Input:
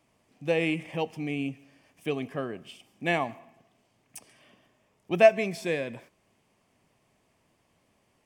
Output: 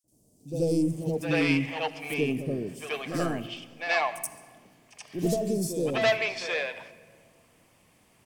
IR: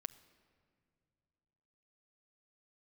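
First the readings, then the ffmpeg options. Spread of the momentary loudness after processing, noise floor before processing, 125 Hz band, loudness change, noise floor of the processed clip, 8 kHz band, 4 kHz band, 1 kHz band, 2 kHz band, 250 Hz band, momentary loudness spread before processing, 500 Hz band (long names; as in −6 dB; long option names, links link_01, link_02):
11 LU, −70 dBFS, +5.5 dB, −0.5 dB, −63 dBFS, +10.5 dB, +5.5 dB, −0.5 dB, +3.5 dB, +5.0 dB, 17 LU, −1.5 dB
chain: -filter_complex "[0:a]asoftclip=type=tanh:threshold=-22dB,acrossover=split=540|5700[link_01][link_02][link_03];[link_01]adelay=40[link_04];[link_02]adelay=750[link_05];[link_04][link_05][link_03]amix=inputs=3:normalize=0,asplit=2[link_06][link_07];[1:a]atrim=start_sample=2205,highshelf=frequency=4500:gain=8,adelay=80[link_08];[link_07][link_08]afir=irnorm=-1:irlink=0,volume=11dB[link_09];[link_06][link_09]amix=inputs=2:normalize=0,volume=-1.5dB"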